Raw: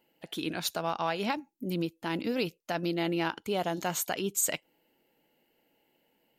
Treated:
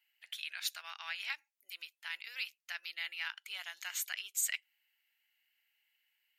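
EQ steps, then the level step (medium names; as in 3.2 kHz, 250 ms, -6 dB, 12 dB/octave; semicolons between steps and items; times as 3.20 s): ladder high-pass 1.6 kHz, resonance 40%; +3.0 dB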